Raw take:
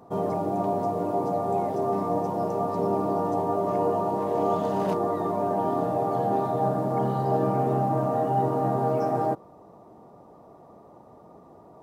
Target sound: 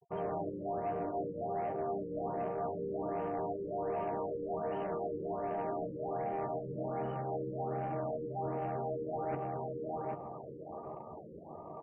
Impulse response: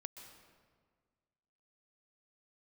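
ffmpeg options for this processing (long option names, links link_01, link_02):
-filter_complex "[0:a]equalizer=frequency=260:width=7.7:gain=-7,asplit=2[link_01][link_02];[link_02]adelay=804,lowpass=frequency=2000:poles=1,volume=-16dB,asplit=2[link_03][link_04];[link_04]adelay=804,lowpass=frequency=2000:poles=1,volume=0.27,asplit=2[link_05][link_06];[link_06]adelay=804,lowpass=frequency=2000:poles=1,volume=0.27[link_07];[link_03][link_05][link_07]amix=inputs=3:normalize=0[link_08];[link_01][link_08]amix=inputs=2:normalize=0,adynamicequalizer=threshold=0.00398:dfrequency=1000:dqfactor=5.5:tfrequency=1000:tqfactor=5.5:attack=5:release=100:ratio=0.375:range=3.5:mode=cutabove:tftype=bell,areverse,acompressor=threshold=-37dB:ratio=12,areverse,crystalizer=i=7.5:c=0,aeval=exprs='sgn(val(0))*max(abs(val(0))-0.0015,0)':channel_layout=same,afftfilt=real='re*gte(hypot(re,im),0.00355)':imag='im*gte(hypot(re,im),0.00355)':win_size=1024:overlap=0.75,asoftclip=type=tanh:threshold=-35.5dB,asplit=2[link_09][link_10];[link_10]adelay=13,volume=-7.5dB[link_11];[link_09][link_11]amix=inputs=2:normalize=0,afftfilt=real='re*lt(b*sr/1024,550*pow(3200/550,0.5+0.5*sin(2*PI*1.3*pts/sr)))':imag='im*lt(b*sr/1024,550*pow(3200/550,0.5+0.5*sin(2*PI*1.3*pts/sr)))':win_size=1024:overlap=0.75,volume=4.5dB"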